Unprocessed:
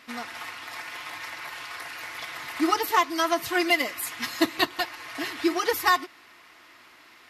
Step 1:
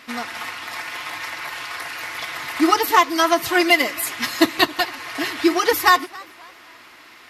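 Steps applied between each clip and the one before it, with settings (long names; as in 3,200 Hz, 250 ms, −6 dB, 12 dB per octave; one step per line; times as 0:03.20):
feedback echo with a swinging delay time 267 ms, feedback 36%, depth 205 cents, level −23 dB
level +7 dB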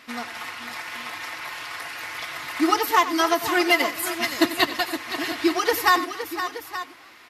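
multi-tap delay 92/516/874 ms −14.5/−10.5/−13.5 dB
level −4 dB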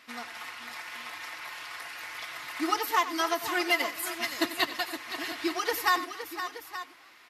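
low-shelf EQ 470 Hz −6 dB
level −6 dB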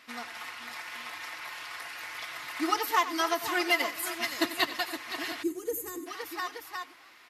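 gain on a spectral selection 0:05.43–0:06.07, 500–6,200 Hz −22 dB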